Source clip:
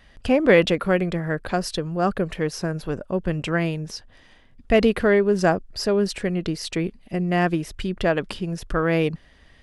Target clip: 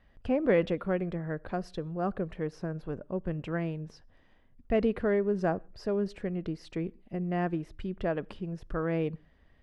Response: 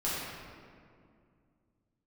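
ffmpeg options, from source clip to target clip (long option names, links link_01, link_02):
-filter_complex "[0:a]lowpass=frequency=1100:poles=1,asplit=2[link_01][link_02];[1:a]atrim=start_sample=2205,afade=type=out:start_time=0.29:duration=0.01,atrim=end_sample=13230,asetrate=66150,aresample=44100[link_03];[link_02][link_03]afir=irnorm=-1:irlink=0,volume=-29dB[link_04];[link_01][link_04]amix=inputs=2:normalize=0,volume=-8.5dB"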